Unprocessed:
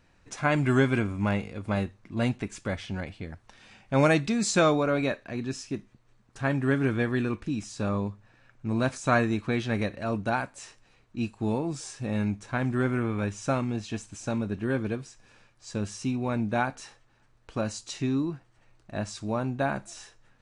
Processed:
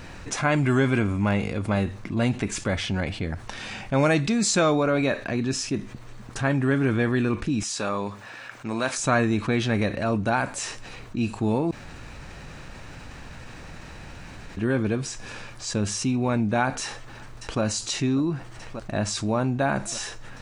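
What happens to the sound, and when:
0:07.63–0:08.98: high-pass filter 820 Hz 6 dB per octave
0:11.71–0:14.57: fill with room tone
0:16.82–0:17.61: delay throw 590 ms, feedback 70%, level −16.5 dB
whole clip: envelope flattener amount 50%

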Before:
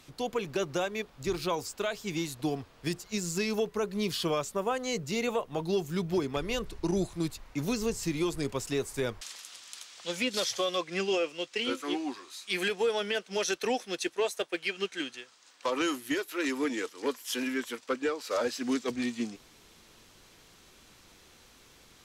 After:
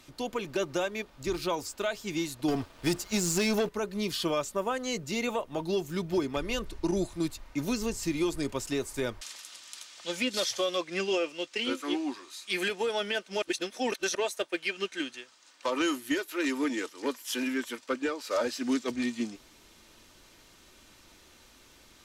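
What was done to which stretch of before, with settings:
0:02.48–0:03.69: leveller curve on the samples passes 2
0:13.42–0:14.15: reverse
whole clip: comb filter 3.3 ms, depth 31%

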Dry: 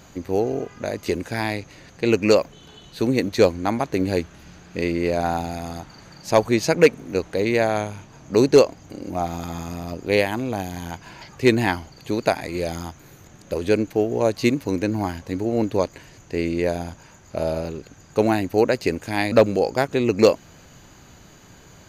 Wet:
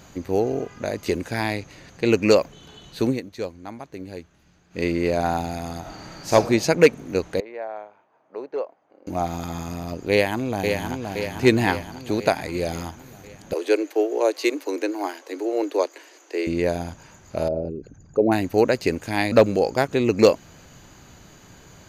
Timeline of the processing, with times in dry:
0:03.08–0:04.83: duck −14 dB, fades 0.13 s
0:05.80–0:06.33: thrown reverb, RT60 0.95 s, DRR −3.5 dB
0:07.40–0:09.07: four-pole ladder band-pass 840 Hz, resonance 20%
0:10.11–0:11.15: delay throw 520 ms, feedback 60%, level −5 dB
0:13.53–0:16.47: Butterworth high-pass 300 Hz 72 dB per octave
0:17.48–0:18.32: spectral envelope exaggerated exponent 2

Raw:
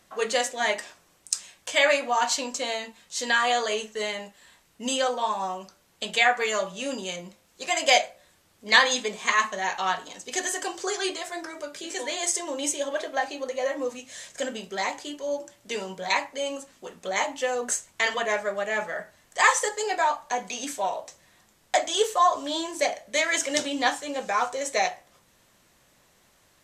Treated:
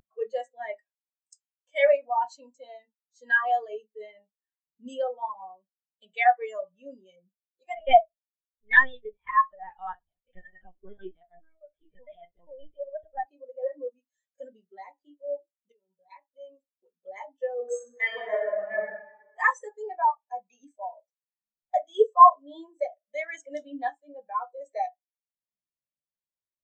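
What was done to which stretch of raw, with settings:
0:07.75–0:13.25: linear-prediction vocoder at 8 kHz pitch kept
0:15.72–0:17.02: fade in, from −12.5 dB
0:17.55–0:18.86: thrown reverb, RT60 2.6 s, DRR −3 dB
whole clip: upward compression, threshold −36 dBFS; every bin expanded away from the loudest bin 2.5 to 1

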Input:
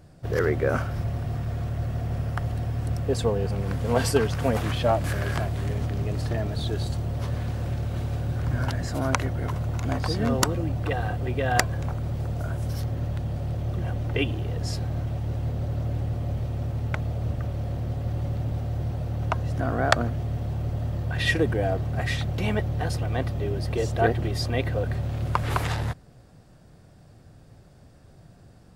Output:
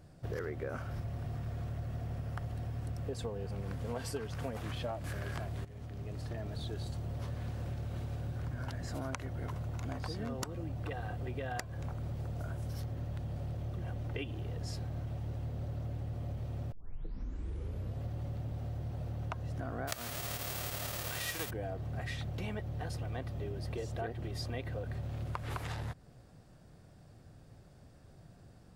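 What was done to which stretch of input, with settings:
0:05.65–0:07.12: fade in, from −17 dB
0:16.72: tape start 1.29 s
0:19.87–0:21.49: spectral envelope flattened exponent 0.3
whole clip: downward compressor 6 to 1, threshold −30 dBFS; level −5.5 dB

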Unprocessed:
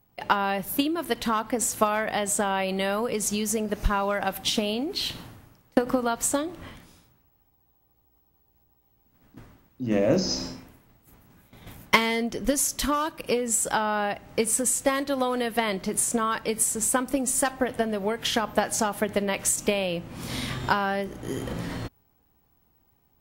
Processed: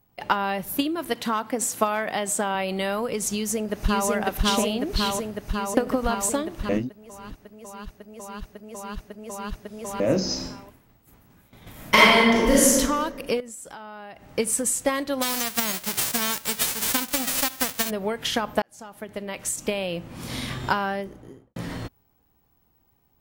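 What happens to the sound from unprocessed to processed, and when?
0:01.13–0:02.55: high-pass filter 130 Hz
0:03.33–0:04.09: delay throw 550 ms, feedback 80%, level −0.5 dB
0:06.69–0:10.00: reverse
0:11.71–0:12.71: thrown reverb, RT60 1.6 s, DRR −8 dB
0:13.40–0:14.30: downward compressor 3 to 1, threshold −42 dBFS
0:15.21–0:17.89: spectral envelope flattened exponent 0.1
0:18.62–0:20.02: fade in
0:20.80–0:21.56: fade out and dull

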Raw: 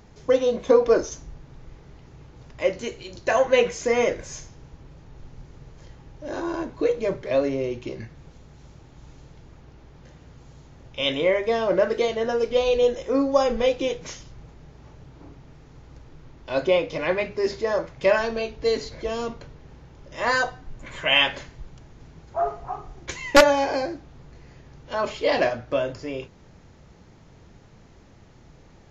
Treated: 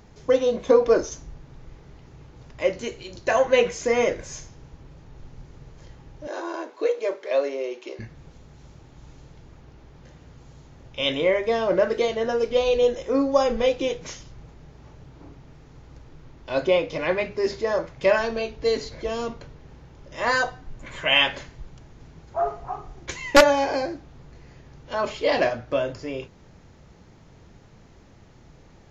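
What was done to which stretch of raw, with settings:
0:06.27–0:07.99: high-pass filter 380 Hz 24 dB per octave

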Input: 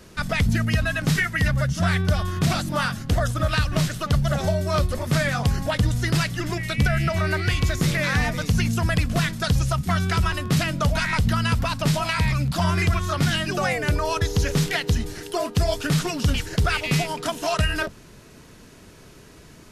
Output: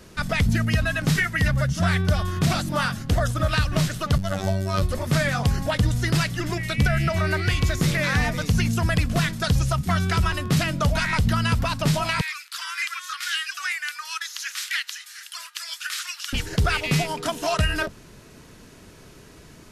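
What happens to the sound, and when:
0:04.18–0:04.82: phases set to zero 95.8 Hz
0:12.21–0:16.33: Butterworth high-pass 1,300 Hz

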